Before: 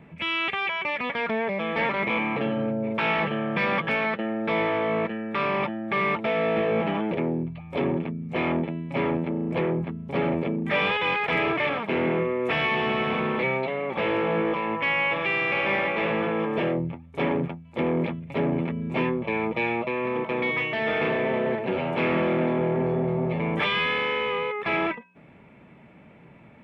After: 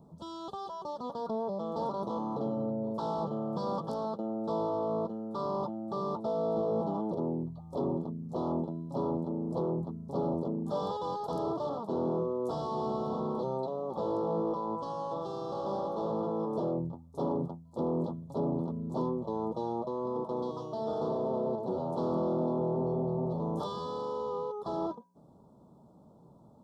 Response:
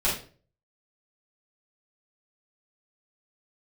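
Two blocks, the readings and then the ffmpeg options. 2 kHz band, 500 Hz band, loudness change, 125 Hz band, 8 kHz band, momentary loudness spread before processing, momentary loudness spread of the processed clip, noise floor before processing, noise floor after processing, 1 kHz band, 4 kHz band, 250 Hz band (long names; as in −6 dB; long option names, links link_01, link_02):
below −40 dB, −6.0 dB, −8.5 dB, −6.5 dB, can't be measured, 5 LU, 5 LU, −50 dBFS, −57 dBFS, −7.5 dB, −19.5 dB, −6.5 dB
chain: -af "asuperstop=centerf=2200:order=8:qfactor=0.67,highshelf=frequency=2500:gain=9,volume=-6.5dB"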